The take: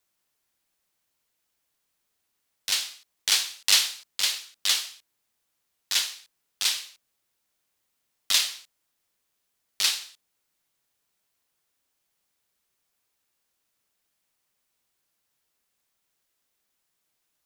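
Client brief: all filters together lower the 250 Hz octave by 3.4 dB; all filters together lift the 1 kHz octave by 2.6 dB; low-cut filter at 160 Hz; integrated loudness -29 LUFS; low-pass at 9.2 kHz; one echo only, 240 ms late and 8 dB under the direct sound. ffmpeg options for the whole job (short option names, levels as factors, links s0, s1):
-af "highpass=160,lowpass=9200,equalizer=f=250:t=o:g=-4,equalizer=f=1000:t=o:g=3.5,aecho=1:1:240:0.398,volume=0.631"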